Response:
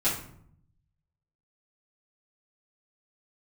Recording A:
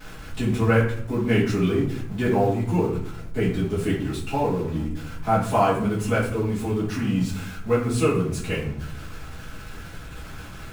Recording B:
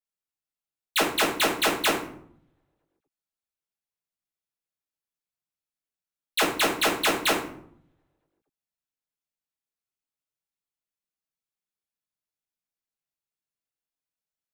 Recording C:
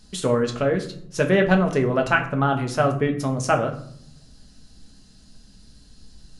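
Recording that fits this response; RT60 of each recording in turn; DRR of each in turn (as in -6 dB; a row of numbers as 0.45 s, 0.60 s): A; 0.65 s, 0.65 s, 0.65 s; -11.0 dB, -4.5 dB, 3.5 dB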